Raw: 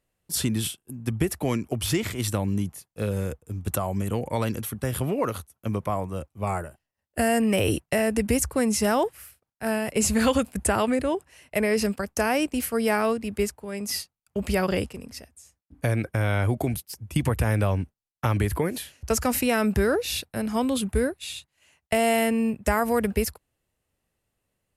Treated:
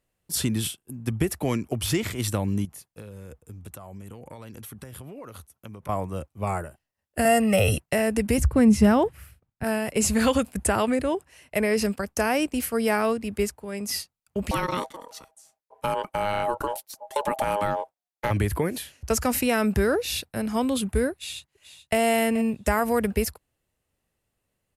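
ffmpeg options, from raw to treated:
ffmpeg -i in.wav -filter_complex "[0:a]asettb=1/sr,asplit=3[link_01][link_02][link_03];[link_01]atrim=end=2.654[link_04];[link_02]atrim=start=2.65:end=5.89,asetpts=PTS-STARTPTS,afade=type=in:duration=0.004:curve=qsin,afade=type=out:start_time=3.236:duration=0.004:curve=qsin,acompressor=threshold=-37dB:ratio=10:attack=3.2:release=140:knee=1:detection=peak[link_05];[link_03]atrim=start=5.886[link_06];[link_04][link_05]acrossfade=duration=0.004:curve1=hsin:curve2=qsin[link_07];[link_07][link_06]acrossfade=duration=0.004:curve1=qsin:curve2=hsin,asettb=1/sr,asplit=3[link_08][link_09][link_10];[link_08]atrim=end=7.254[link_11];[link_09]atrim=start=7.25:end=7.78,asetpts=PTS-STARTPTS,afade=type=in:duration=0.004:curve=qsin,afade=type=out:start_time=0.526:duration=0.004:curve=qsin,aecho=1:1:1.5:0.98,atrim=end_sample=23373[link_12];[link_10]atrim=start=7.776[link_13];[link_11][link_12]acrossfade=duration=0.004:curve1=hsin:curve2=qsin[link_14];[link_14][link_13]acrossfade=duration=0.004:curve1=qsin:curve2=hsin,asettb=1/sr,asplit=3[link_15][link_16][link_17];[link_15]atrim=end=8.384[link_18];[link_16]atrim=start=8.38:end=9.64,asetpts=PTS-STARTPTS,afade=type=in:duration=0.004:curve=qsin,afade=type=out:start_time=1.256:duration=0.004:curve=qsin,bass=frequency=250:gain=14,treble=frequency=4000:gain=-8[link_19];[link_17]atrim=start=9.636[link_20];[link_18][link_19]acrossfade=duration=0.004:curve1=hsin:curve2=qsin[link_21];[link_21][link_20]acrossfade=duration=0.004:curve1=qsin:curve2=hsin,asettb=1/sr,asplit=3[link_22][link_23][link_24];[link_22]atrim=end=14.514[link_25];[link_23]atrim=start=14.51:end=18.31,asetpts=PTS-STARTPTS,afade=type=in:duration=0.004:curve=qsin,afade=type=out:start_time=3.796:duration=0.004:curve=qsin,aeval=exprs='val(0)*sin(2*PI*720*n/s)':channel_layout=same[link_26];[link_24]atrim=start=18.306[link_27];[link_25][link_26]acrossfade=duration=0.004:curve1=hsin:curve2=qsin[link_28];[link_28][link_27]acrossfade=duration=0.004:curve1=qsin:curve2=hsin,asplit=2[link_29][link_30];[link_30]afade=type=in:start_time=21.12:duration=0.01,afade=type=out:start_time=21.98:duration=0.01,aecho=0:1:430|860|1290:0.211349|0.0634047|0.0190214[link_31];[link_29][link_31]amix=inputs=2:normalize=0" out.wav

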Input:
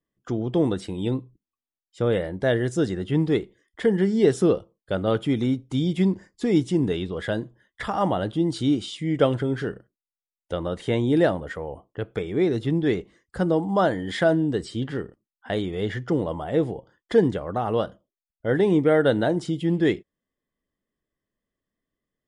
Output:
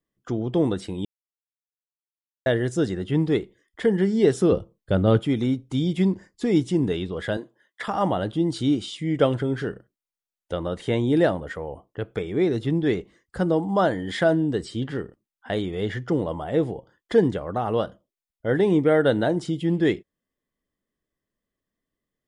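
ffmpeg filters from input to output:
ffmpeg -i in.wav -filter_complex "[0:a]asettb=1/sr,asplit=3[link_01][link_02][link_03];[link_01]atrim=end=4.524[link_04];[link_02]atrim=start=4.52:end=5.2,asetpts=PTS-STARTPTS,afade=type=in:duration=0.004:curve=qsin,afade=type=out:start_time=0.676:duration=0.004:curve=qsin,lowshelf=frequency=260:gain=11[link_05];[link_03]atrim=start=5.196[link_06];[link_04][link_05]acrossfade=duration=0.004:curve1=hsin:curve2=qsin[link_07];[link_07][link_06]acrossfade=duration=0.004:curve1=qsin:curve2=hsin,asettb=1/sr,asplit=3[link_08][link_09][link_10];[link_08]atrim=end=7.374[link_11];[link_09]atrim=start=7.37:end=7.88,asetpts=PTS-STARTPTS,afade=type=in:duration=0.004:curve=qsin,afade=type=out:start_time=0.506:duration=0.004:curve=qsin,highpass=350[link_12];[link_10]atrim=start=7.876[link_13];[link_11][link_12]acrossfade=duration=0.004:curve1=hsin:curve2=qsin[link_14];[link_14][link_13]acrossfade=duration=0.004:curve1=qsin:curve2=hsin,asplit=3[link_15][link_16][link_17];[link_15]atrim=end=1.05,asetpts=PTS-STARTPTS,afade=type=out:start_time=1.046:duration=0.004:curve=hsin[link_18];[link_16]atrim=start=1.05:end=2.46,asetpts=PTS-STARTPTS,volume=0[link_19];[link_17]atrim=start=2.46,asetpts=PTS-STARTPTS,afade=type=in:duration=0.004:curve=hsin[link_20];[link_18][link_19][link_20]concat=n=3:v=0:a=1" out.wav

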